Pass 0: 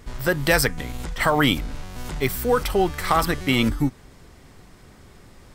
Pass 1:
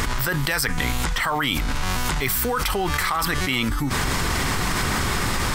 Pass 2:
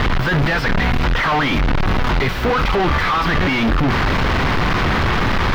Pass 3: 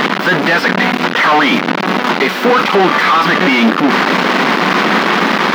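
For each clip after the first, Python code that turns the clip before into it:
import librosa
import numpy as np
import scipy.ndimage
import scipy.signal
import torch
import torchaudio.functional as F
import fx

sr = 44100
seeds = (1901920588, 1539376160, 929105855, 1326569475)

y1 = fx.low_shelf_res(x, sr, hz=780.0, db=-6.0, q=1.5)
y1 = fx.env_flatten(y1, sr, amount_pct=100)
y1 = y1 * 10.0 ** (-6.0 / 20.0)
y2 = np.sign(y1) * np.sqrt(np.mean(np.square(y1)))
y2 = fx.air_absorb(y2, sr, metres=300.0)
y2 = y2 * 10.0 ** (8.5 / 20.0)
y3 = fx.brickwall_highpass(y2, sr, low_hz=170.0)
y3 = y3 * 10.0 ** (7.5 / 20.0)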